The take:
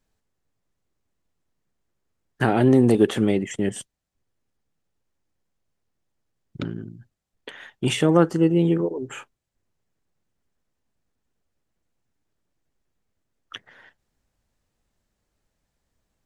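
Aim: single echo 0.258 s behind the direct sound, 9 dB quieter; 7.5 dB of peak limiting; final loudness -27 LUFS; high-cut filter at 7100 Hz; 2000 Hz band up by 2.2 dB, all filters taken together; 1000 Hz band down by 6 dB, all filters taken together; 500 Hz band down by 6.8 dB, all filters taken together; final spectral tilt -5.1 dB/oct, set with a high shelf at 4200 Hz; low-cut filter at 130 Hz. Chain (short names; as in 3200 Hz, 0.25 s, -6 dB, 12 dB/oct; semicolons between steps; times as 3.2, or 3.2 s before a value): HPF 130 Hz; LPF 7100 Hz; bell 500 Hz -8.5 dB; bell 1000 Hz -7 dB; bell 2000 Hz +5 dB; high shelf 4200 Hz +3.5 dB; limiter -15 dBFS; echo 0.258 s -9 dB; gain -0.5 dB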